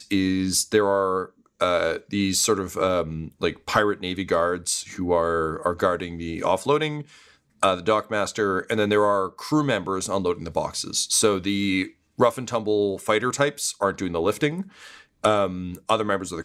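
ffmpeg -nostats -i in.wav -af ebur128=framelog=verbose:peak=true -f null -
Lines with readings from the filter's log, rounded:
Integrated loudness:
  I:         -23.6 LUFS
  Threshold: -33.8 LUFS
Loudness range:
  LRA:         1.6 LU
  Threshold: -43.8 LUFS
  LRA low:   -24.6 LUFS
  LRA high:  -23.0 LUFS
True peak:
  Peak:       -4.9 dBFS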